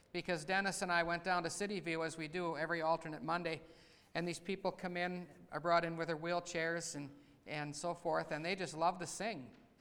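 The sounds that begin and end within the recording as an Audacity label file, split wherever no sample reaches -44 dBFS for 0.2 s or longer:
4.150000	5.240000	sound
5.520000	7.070000	sound
7.480000	9.450000	sound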